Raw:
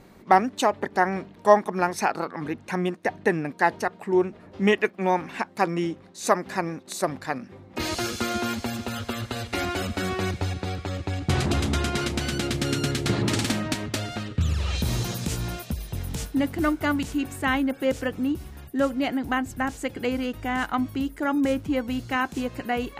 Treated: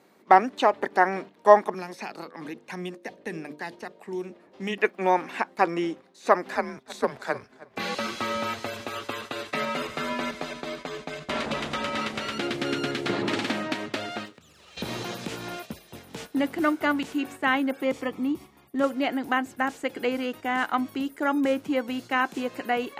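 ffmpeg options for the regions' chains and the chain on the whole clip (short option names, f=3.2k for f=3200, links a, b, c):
-filter_complex "[0:a]asettb=1/sr,asplit=3[a][b][c];[a]atrim=end=1.744[d];[b]atrim=start=1.74:end=4.78,asetpts=PTS-STARTPTS,afade=t=in:d=0.004:c=qsin,afade=t=out:st=3.036:d=0.004:c=qsin,equalizer=f=1.4k:w=6.8:g=-4,bandreject=f=49.71:t=h:w=4,bandreject=f=99.42:t=h:w=4,bandreject=f=149.13:t=h:w=4,bandreject=f=198.84:t=h:w=4,bandreject=f=248.55:t=h:w=4,bandreject=f=298.26:t=h:w=4,bandreject=f=347.97:t=h:w=4,bandreject=f=397.68:t=h:w=4,bandreject=f=447.39:t=h:w=4,bandreject=f=497.1:t=h:w=4,bandreject=f=546.81:t=h:w=4,bandreject=f=596.52:t=h:w=4,acrossover=split=230|3000[e][f][g];[f]acompressor=threshold=-37dB:ratio=5:attack=3.2:release=140:knee=2.83:detection=peak[h];[e][h][g]amix=inputs=3:normalize=0[i];[c]atrim=start=4.776[j];[d][i]acrossfade=d=0.004:c1=hsin:c2=qsin[k];[k][j]acrossfade=d=0.004:c1=qsin:c2=hsin,asettb=1/sr,asplit=3[l][m][n];[l]atrim=end=6.554[o];[m]atrim=start=6.55:end=12.39,asetpts=PTS-STARTPTS,afade=t=in:d=0.004:c=qsin,afade=t=out:st=5.836:d=0.004:c=qsin,afreqshift=-130,asplit=2[p][q];[q]adelay=309,lowpass=f=4k:p=1,volume=-15.5dB,asplit=2[r][s];[s]adelay=309,lowpass=f=4k:p=1,volume=0.29,asplit=2[t][u];[u]adelay=309,lowpass=f=4k:p=1,volume=0.29[v];[p][r][t][v]amix=inputs=4:normalize=0,atrim=end_sample=257544[w];[n]atrim=start=12.386[x];[o][w]acrossfade=d=0.004:c1=hsin:c2=qsin[y];[y][x]acrossfade=d=0.004:c1=qsin:c2=hsin,asettb=1/sr,asplit=3[z][aa][ab];[z]atrim=end=14.254[ac];[aa]atrim=start=14.25:end=14.77,asetpts=PTS-STARTPTS,afade=t=in:d=0.004:c=qsin,afade=t=out:st=0.516:d=0.004:c=qsin,highshelf=f=8.4k:g=8,acompressor=threshold=-35dB:ratio=6:attack=3.2:release=140:knee=1:detection=peak,aeval=exprs='sgn(val(0))*max(abs(val(0))-0.00237,0)':c=same[ad];[ab]atrim=start=14.766[ae];[ac][ad]acrossfade=d=0.004:c1=hsin:c2=qsin[af];[af][ae]acrossfade=d=0.004:c1=qsin:c2=hsin,asettb=1/sr,asplit=3[ag][ah][ai];[ag]atrim=end=17.814[aj];[ah]atrim=start=17.81:end=18.84,asetpts=PTS-STARTPTS,afade=t=in:d=0.004:c=qsin,afade=t=out:st=1.026:d=0.004:c=qsin,highshelf=f=3.8k:g=-7.5,bandreject=f=1.5k:w=6.3,aecho=1:1:0.9:0.36,atrim=end_sample=45423[ak];[ai]atrim=start=18.836[al];[aj][ak]acrossfade=d=0.004:c1=hsin:c2=qsin[am];[am][al]acrossfade=d=0.004:c1=qsin:c2=hsin,acrossover=split=3900[an][ao];[ao]acompressor=threshold=-49dB:ratio=4:attack=1:release=60[ap];[an][ap]amix=inputs=2:normalize=0,highpass=290,agate=range=-7dB:threshold=-41dB:ratio=16:detection=peak,volume=1.5dB"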